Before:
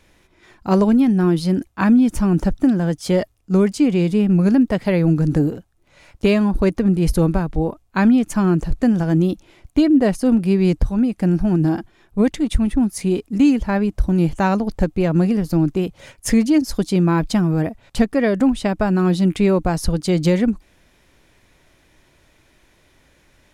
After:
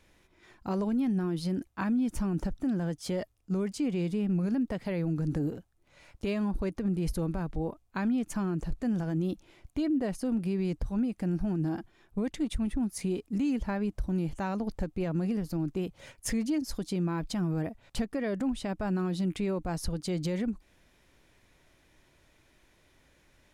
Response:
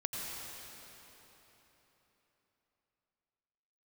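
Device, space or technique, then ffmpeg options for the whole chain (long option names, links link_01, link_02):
stacked limiters: -af "alimiter=limit=-9.5dB:level=0:latency=1:release=53,alimiter=limit=-14.5dB:level=0:latency=1:release=238,volume=-8dB"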